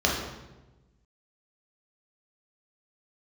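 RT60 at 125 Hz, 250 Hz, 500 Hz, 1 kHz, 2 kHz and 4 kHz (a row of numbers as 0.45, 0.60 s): 1.6, 1.4, 1.2, 1.0, 0.90, 0.80 s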